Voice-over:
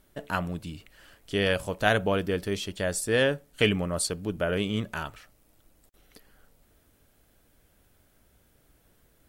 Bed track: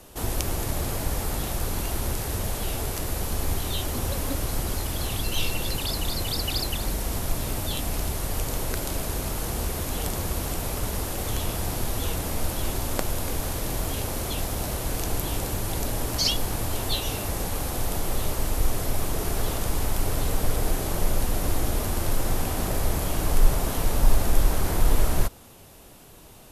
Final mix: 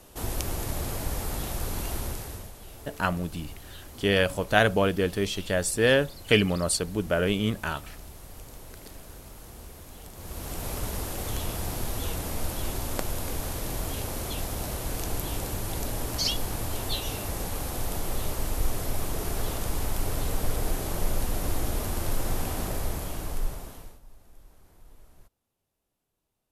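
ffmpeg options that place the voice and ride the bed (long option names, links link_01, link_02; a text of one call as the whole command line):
ffmpeg -i stem1.wav -i stem2.wav -filter_complex "[0:a]adelay=2700,volume=2.5dB[link_01];[1:a]volume=9.5dB,afade=type=out:start_time=1.95:duration=0.57:silence=0.223872,afade=type=in:start_time=10.14:duration=0.57:silence=0.223872,afade=type=out:start_time=22.53:duration=1.47:silence=0.0334965[link_02];[link_01][link_02]amix=inputs=2:normalize=0" out.wav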